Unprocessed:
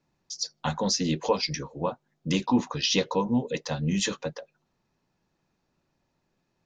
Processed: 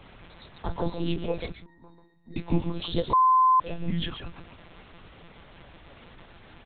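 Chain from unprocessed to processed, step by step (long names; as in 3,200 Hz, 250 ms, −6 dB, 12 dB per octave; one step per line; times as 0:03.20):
all-pass phaser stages 12, 0.4 Hz, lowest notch 580–2,600 Hz
background noise pink −48 dBFS
0:01.51–0:02.37: resonances in every octave A#, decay 0.32 s
slap from a distant wall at 23 metres, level −7 dB
one-pitch LPC vocoder at 8 kHz 170 Hz
0:03.13–0:03.60: beep over 1,030 Hz −15 dBFS
level −1 dB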